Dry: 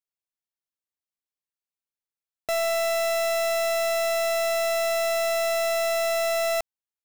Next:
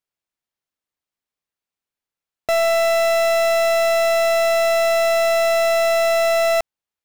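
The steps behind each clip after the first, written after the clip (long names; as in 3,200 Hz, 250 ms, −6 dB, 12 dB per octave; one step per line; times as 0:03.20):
high-shelf EQ 5,100 Hz −8 dB
level +8 dB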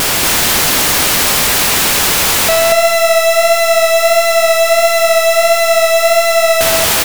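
sign of each sample alone
pitch vibrato 1.5 Hz 24 cents
on a send: repeating echo 233 ms, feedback 23%, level −4 dB
on the sum: level +8 dB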